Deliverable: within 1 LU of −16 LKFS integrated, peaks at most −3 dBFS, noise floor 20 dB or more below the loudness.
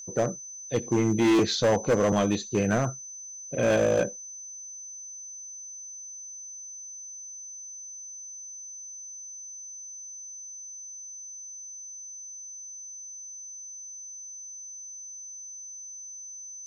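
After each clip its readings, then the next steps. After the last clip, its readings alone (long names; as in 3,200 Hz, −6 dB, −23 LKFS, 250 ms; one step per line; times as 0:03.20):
share of clipped samples 1.0%; peaks flattened at −17.5 dBFS; interfering tone 6,100 Hz; level of the tone −39 dBFS; integrated loudness −31.0 LKFS; sample peak −17.5 dBFS; target loudness −16.0 LKFS
→ clipped peaks rebuilt −17.5 dBFS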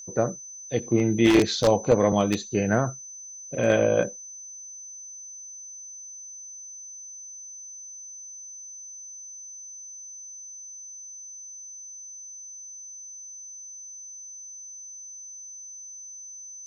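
share of clipped samples 0.0%; interfering tone 6,100 Hz; level of the tone −39 dBFS
→ notch filter 6,100 Hz, Q 30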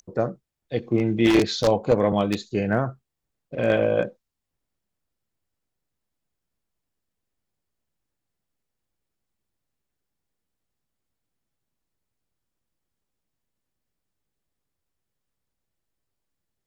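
interfering tone none found; integrated loudness −23.0 LKFS; sample peak −8.5 dBFS; target loudness −16.0 LKFS
→ level +7 dB
brickwall limiter −3 dBFS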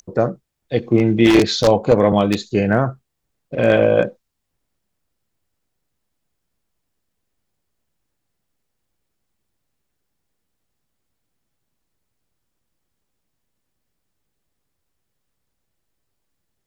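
integrated loudness −16.5 LKFS; sample peak −3.0 dBFS; background noise floor −76 dBFS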